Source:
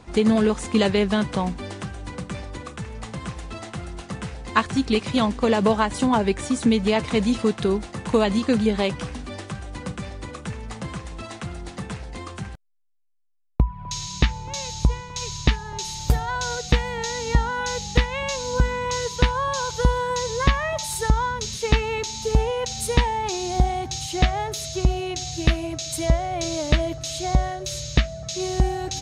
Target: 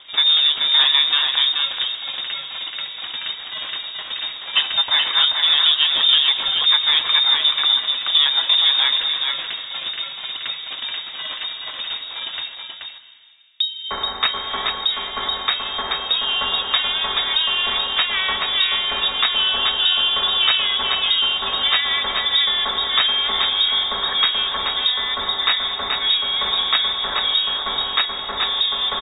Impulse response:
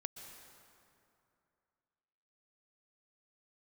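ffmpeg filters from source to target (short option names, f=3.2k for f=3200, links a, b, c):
-filter_complex "[0:a]highpass=f=130:p=1,highshelf=f=2.5k:g=6.5,bandreject=f=1.9k:w=8.3,bandreject=f=375.1:t=h:w=4,bandreject=f=750.2:t=h:w=4,bandreject=f=1.1253k:t=h:w=4,bandreject=f=1.5004k:t=h:w=4,bandreject=f=1.8755k:t=h:w=4,bandreject=f=2.2506k:t=h:w=4,bandreject=f=2.6257k:t=h:w=4,bandreject=f=3.0008k:t=h:w=4,bandreject=f=3.3759k:t=h:w=4,bandreject=f=3.751k:t=h:w=4,bandreject=f=4.1261k:t=h:w=4,bandreject=f=4.5012k:t=h:w=4,bandreject=f=4.8763k:t=h:w=4,bandreject=f=5.2514k:t=h:w=4,bandreject=f=5.6265k:t=h:w=4,asetrate=30296,aresample=44100,atempo=1.45565,aresample=11025,asoftclip=type=tanh:threshold=-14.5dB,aresample=44100,aecho=1:1:430:0.596,asplit=2[a][b];[1:a]atrim=start_sample=2205[c];[b][c]afir=irnorm=-1:irlink=0,volume=1.5dB[d];[a][d]amix=inputs=2:normalize=0,lowpass=f=3.2k:t=q:w=0.5098,lowpass=f=3.2k:t=q:w=0.6013,lowpass=f=3.2k:t=q:w=0.9,lowpass=f=3.2k:t=q:w=2.563,afreqshift=-3800"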